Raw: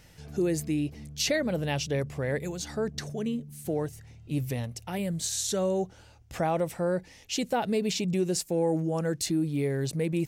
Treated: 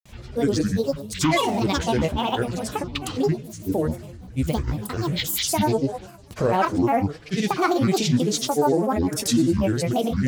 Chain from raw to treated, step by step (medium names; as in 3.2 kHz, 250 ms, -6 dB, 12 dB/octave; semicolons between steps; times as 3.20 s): two-slope reverb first 0.79 s, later 2.6 s, from -18 dB, DRR 6 dB; granulator, pitch spread up and down by 12 st; trim +7 dB